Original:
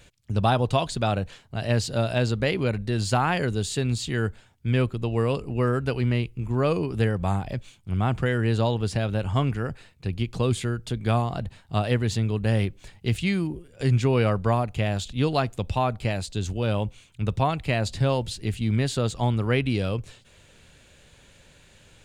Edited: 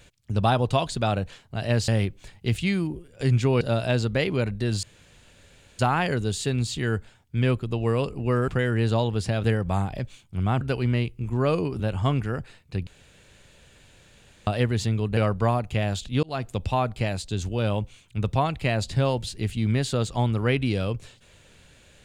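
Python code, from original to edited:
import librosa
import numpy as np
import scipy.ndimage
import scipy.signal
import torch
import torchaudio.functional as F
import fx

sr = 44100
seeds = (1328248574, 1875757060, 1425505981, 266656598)

y = fx.edit(x, sr, fx.insert_room_tone(at_s=3.1, length_s=0.96),
    fx.swap(start_s=5.79, length_s=1.19, other_s=8.15, other_length_s=0.96),
    fx.room_tone_fill(start_s=10.18, length_s=1.6),
    fx.move(start_s=12.48, length_s=1.73, to_s=1.88),
    fx.fade_in_span(start_s=15.27, length_s=0.26), tone=tone)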